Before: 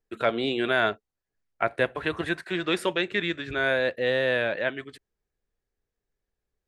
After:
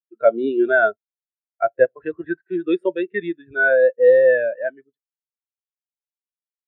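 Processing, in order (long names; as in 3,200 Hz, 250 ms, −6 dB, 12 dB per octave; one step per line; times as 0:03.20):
every bin expanded away from the loudest bin 2.5 to 1
level +6.5 dB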